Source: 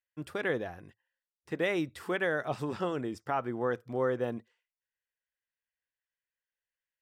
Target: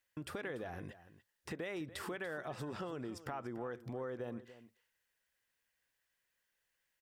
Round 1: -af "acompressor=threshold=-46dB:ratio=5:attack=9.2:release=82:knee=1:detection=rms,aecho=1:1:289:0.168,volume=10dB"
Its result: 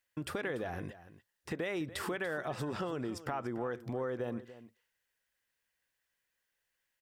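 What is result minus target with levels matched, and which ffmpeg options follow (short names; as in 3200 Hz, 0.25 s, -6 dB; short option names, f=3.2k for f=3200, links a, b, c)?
compressor: peak gain reduction -5.5 dB
-af "acompressor=threshold=-53dB:ratio=5:attack=9.2:release=82:knee=1:detection=rms,aecho=1:1:289:0.168,volume=10dB"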